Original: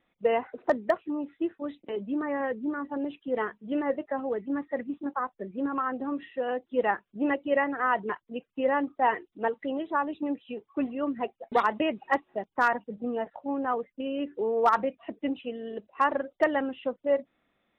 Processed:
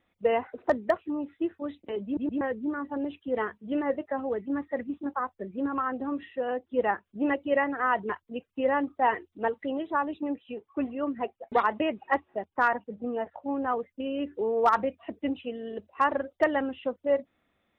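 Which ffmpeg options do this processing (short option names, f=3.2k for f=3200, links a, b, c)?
-filter_complex "[0:a]asettb=1/sr,asplit=3[a][b][c];[a]atrim=end=6.354[d];[b]atrim=start=6.35:end=7.05,asetpts=PTS-STARTPTS,afade=t=in:d=0.004:c=qsin,afade=t=out:st=0.696:d=0.004:c=qsin,highshelf=f=3.5k:g=-7.5[e];[c]atrim=start=7.046[f];[d][e]acrossfade=d=0.004:c1=hsin:c2=qsin[g];[g][f]acrossfade=d=0.004:c1=qsin:c2=hsin,asettb=1/sr,asplit=3[h][i][j];[h]atrim=end=10.194[k];[i]atrim=start=10.19:end=13.45,asetpts=PTS-STARTPTS,afade=t=in:d=0.004:c=qsin,afade=t=out:st=3.256:d=0.004:c=qsin,bass=f=250:g=-3,treble=f=4k:g=-10[l];[j]atrim=start=13.446[m];[k][l]acrossfade=d=0.004:c1=hsin:c2=qsin[n];[n][m]acrossfade=d=0.004:c1=qsin:c2=hsin,asplit=4[o][p][q][r];[o]atrim=end=2.172[s];[p]atrim=start=2.048:end=2.172[t];[q]atrim=start=2.048:end=2.172[u];[r]atrim=start=2.408[v];[s][t]acrossfade=d=0.004:c1=hsin:c2=hsin[w];[w][u]acrossfade=d=0.004:c1=hsin:c2=hsin[x];[x][v]acrossfade=d=0.004:c1=hsin:c2=hsin,equalizer=f=84:t=o:w=0.45:g=13"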